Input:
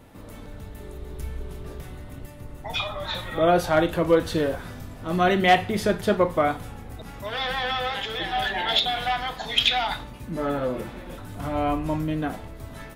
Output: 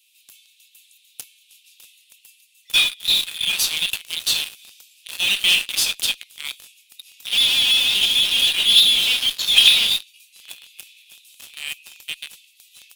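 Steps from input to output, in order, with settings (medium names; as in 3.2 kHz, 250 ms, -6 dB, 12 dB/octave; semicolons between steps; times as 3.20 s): Chebyshev high-pass 2.5 kHz, order 6; in parallel at -7.5 dB: fuzz box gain 39 dB, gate -43 dBFS; on the sum: trim +4.5 dB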